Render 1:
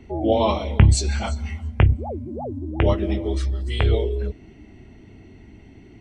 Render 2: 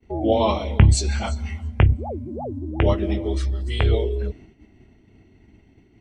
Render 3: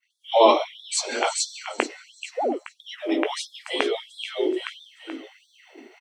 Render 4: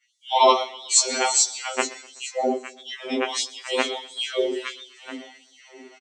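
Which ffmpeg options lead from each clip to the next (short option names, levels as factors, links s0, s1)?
-af "agate=range=0.0224:threshold=0.0126:ratio=3:detection=peak"
-filter_complex "[0:a]asplit=5[s0][s1][s2][s3][s4];[s1]adelay=431,afreqshift=-46,volume=0.501[s5];[s2]adelay=862,afreqshift=-92,volume=0.16[s6];[s3]adelay=1293,afreqshift=-138,volume=0.0513[s7];[s4]adelay=1724,afreqshift=-184,volume=0.0164[s8];[s0][s5][s6][s7][s8]amix=inputs=5:normalize=0,dynaudnorm=f=170:g=3:m=4.73,afftfilt=real='re*gte(b*sr/1024,230*pow(3400/230,0.5+0.5*sin(2*PI*1.5*pts/sr)))':imag='im*gte(b*sr/1024,230*pow(3400/230,0.5+0.5*sin(2*PI*1.5*pts/sr)))':win_size=1024:overlap=0.75"
-af "lowpass=f=7200:t=q:w=3,aecho=1:1:126|252|378:0.0841|0.0395|0.0186,afftfilt=real='re*2.45*eq(mod(b,6),0)':imag='im*2.45*eq(mod(b,6),0)':win_size=2048:overlap=0.75,volume=1.58"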